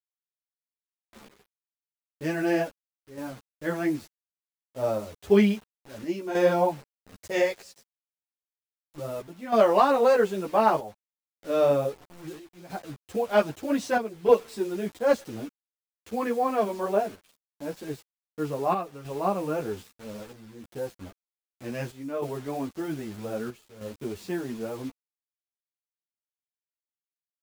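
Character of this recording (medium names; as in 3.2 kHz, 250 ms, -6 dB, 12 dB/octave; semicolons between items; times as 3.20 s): a quantiser's noise floor 8-bit, dither none; chopped level 0.63 Hz, depth 60%, duty 80%; a shimmering, thickened sound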